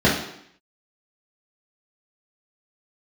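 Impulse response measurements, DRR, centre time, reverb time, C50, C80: −7.5 dB, 42 ms, 0.70 s, 4.5 dB, 8.5 dB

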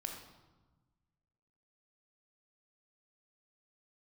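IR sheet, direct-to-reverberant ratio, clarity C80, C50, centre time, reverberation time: 2.5 dB, 7.0 dB, 4.5 dB, 35 ms, 1.2 s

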